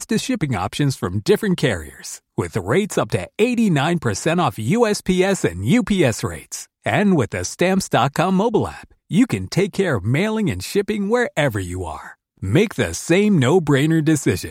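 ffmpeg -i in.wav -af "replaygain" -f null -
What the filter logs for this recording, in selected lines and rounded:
track_gain = -0.9 dB
track_peak = 0.491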